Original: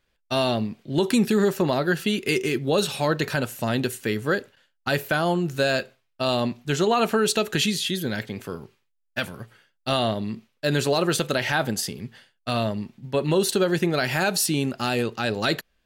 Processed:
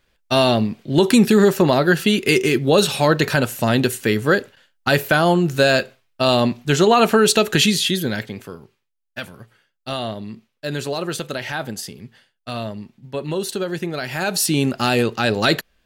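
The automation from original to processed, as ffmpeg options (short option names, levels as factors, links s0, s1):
-af "volume=6.68,afade=t=out:st=7.84:d=0.72:silence=0.316228,afade=t=in:st=14.11:d=0.56:silence=0.334965"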